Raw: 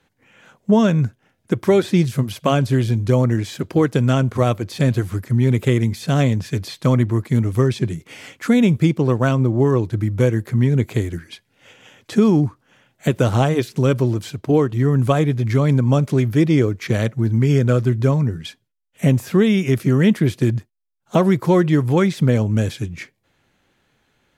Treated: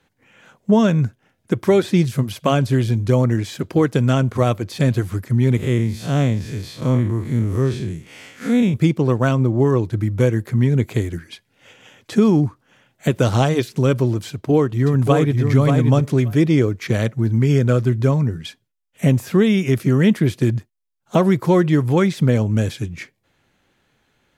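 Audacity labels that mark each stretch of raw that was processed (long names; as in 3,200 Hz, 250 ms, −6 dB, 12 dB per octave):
5.570000	8.740000	spectrum smeared in time width 104 ms
13.220000	13.620000	parametric band 4,800 Hz +6.5 dB 0.93 octaves
14.280000	15.430000	delay throw 580 ms, feedback 10%, level −4.5 dB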